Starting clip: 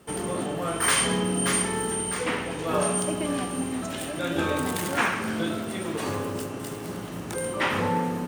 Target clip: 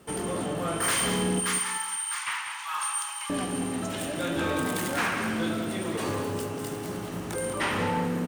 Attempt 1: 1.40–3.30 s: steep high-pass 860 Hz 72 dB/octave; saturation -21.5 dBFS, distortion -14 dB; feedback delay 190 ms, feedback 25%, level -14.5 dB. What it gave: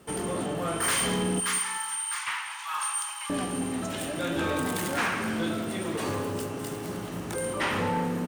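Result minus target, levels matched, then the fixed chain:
echo-to-direct -6 dB
1.40–3.30 s: steep high-pass 860 Hz 72 dB/octave; saturation -21.5 dBFS, distortion -14 dB; feedback delay 190 ms, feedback 25%, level -8.5 dB

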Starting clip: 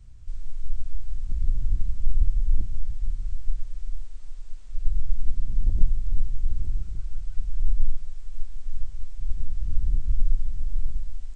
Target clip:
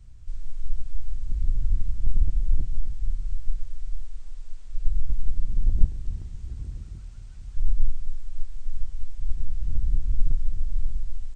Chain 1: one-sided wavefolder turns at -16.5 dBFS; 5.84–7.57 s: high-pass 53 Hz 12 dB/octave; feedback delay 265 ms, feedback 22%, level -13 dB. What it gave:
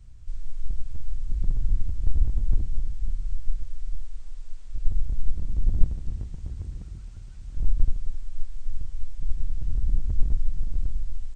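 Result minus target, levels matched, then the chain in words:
one-sided wavefolder: distortion +15 dB
one-sided wavefolder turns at -10.5 dBFS; 5.84–7.57 s: high-pass 53 Hz 12 dB/octave; feedback delay 265 ms, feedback 22%, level -13 dB

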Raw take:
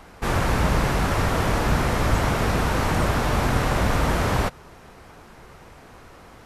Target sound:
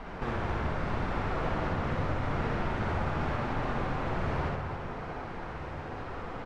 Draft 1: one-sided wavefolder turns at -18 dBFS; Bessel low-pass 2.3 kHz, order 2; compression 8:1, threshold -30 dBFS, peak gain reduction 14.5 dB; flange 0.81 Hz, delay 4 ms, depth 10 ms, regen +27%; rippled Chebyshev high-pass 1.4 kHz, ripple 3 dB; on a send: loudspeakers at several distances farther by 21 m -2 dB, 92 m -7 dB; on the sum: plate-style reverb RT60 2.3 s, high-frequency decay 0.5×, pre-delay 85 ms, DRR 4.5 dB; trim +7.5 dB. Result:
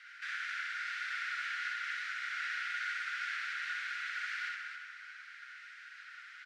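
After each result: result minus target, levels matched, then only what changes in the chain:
1 kHz band -6.0 dB; compression: peak gain reduction -5.5 dB
remove: rippled Chebyshev high-pass 1.4 kHz, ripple 3 dB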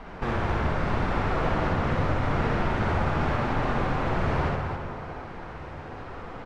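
compression: peak gain reduction -5.5 dB
change: compression 8:1, threshold -36.5 dBFS, peak gain reduction 20 dB

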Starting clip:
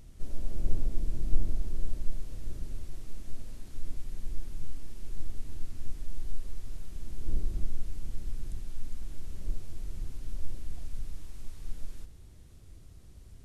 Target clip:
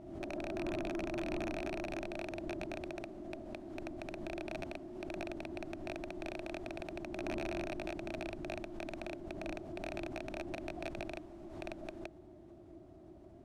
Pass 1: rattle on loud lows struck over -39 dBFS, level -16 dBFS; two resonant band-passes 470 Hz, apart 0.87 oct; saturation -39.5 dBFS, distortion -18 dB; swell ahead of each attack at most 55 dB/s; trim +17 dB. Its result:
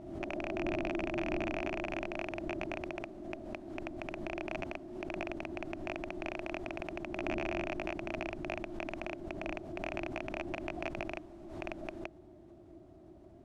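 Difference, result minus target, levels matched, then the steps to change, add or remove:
saturation: distortion -10 dB
change: saturation -49.5 dBFS, distortion -8 dB

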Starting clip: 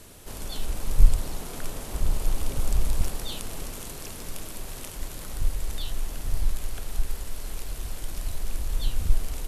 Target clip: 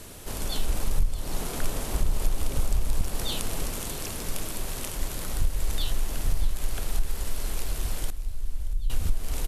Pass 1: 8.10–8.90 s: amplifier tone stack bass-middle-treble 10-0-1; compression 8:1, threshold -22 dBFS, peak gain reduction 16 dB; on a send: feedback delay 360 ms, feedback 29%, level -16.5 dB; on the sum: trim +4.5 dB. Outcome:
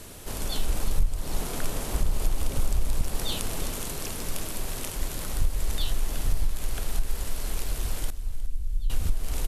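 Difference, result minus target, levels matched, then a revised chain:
echo 269 ms early
8.10–8.90 s: amplifier tone stack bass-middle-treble 10-0-1; compression 8:1, threshold -22 dBFS, peak gain reduction 16 dB; on a send: feedback delay 629 ms, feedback 29%, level -16.5 dB; on the sum: trim +4.5 dB

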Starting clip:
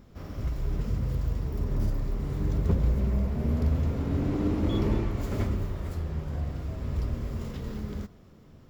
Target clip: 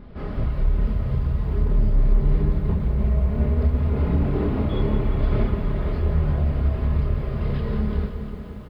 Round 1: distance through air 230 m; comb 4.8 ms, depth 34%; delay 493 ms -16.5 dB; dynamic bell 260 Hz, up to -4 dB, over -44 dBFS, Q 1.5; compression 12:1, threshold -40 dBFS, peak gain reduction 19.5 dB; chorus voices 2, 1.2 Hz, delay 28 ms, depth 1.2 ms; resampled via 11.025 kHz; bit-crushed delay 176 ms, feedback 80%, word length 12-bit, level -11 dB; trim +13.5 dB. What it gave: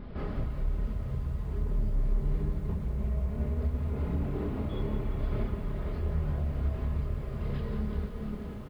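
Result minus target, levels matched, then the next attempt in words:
compression: peak gain reduction +10 dB
distance through air 230 m; comb 4.8 ms, depth 34%; delay 493 ms -16.5 dB; dynamic bell 260 Hz, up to -4 dB, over -44 dBFS, Q 1.5; compression 12:1, threshold -29 dBFS, peak gain reduction 9.5 dB; chorus voices 2, 1.2 Hz, delay 28 ms, depth 1.2 ms; resampled via 11.025 kHz; bit-crushed delay 176 ms, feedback 80%, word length 12-bit, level -11 dB; trim +13.5 dB

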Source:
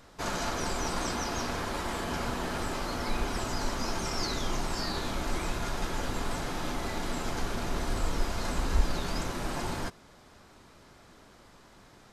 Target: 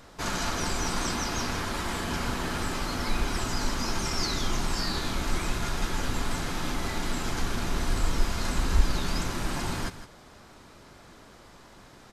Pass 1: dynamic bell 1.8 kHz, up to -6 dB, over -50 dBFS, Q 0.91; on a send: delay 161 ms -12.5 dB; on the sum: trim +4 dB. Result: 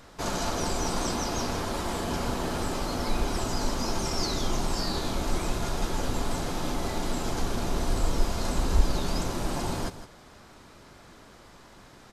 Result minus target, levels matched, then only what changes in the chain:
2 kHz band -4.5 dB
change: dynamic bell 590 Hz, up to -6 dB, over -50 dBFS, Q 0.91

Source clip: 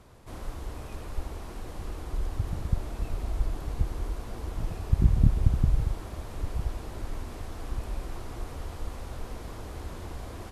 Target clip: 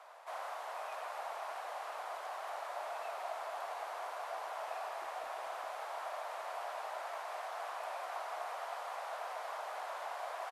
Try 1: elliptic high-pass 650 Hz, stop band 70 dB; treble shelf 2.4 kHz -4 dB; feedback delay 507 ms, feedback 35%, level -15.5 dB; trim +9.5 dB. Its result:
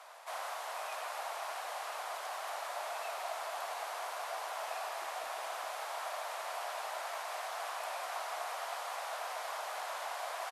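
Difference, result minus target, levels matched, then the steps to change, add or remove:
4 kHz band +5.0 dB
change: treble shelf 2.4 kHz -15 dB

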